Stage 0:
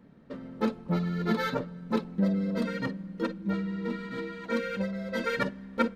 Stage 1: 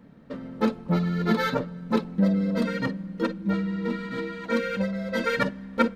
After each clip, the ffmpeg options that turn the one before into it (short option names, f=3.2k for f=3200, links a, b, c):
-af "bandreject=f=380:w=12,volume=4.5dB"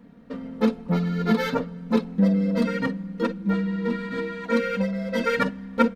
-af "aecho=1:1:4.2:0.49"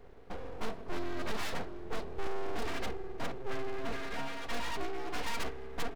-af "aeval=exprs='abs(val(0))':c=same,aeval=exprs='(tanh(10*val(0)+0.65)-tanh(0.65))/10':c=same,volume=1.5dB"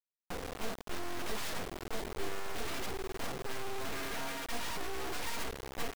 -af "acrusher=bits=5:mix=0:aa=0.000001,volume=-3.5dB"